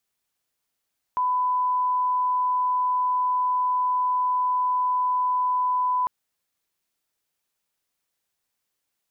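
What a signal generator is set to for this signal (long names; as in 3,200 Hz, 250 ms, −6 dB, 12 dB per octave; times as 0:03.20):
line-up tone −20 dBFS 4.90 s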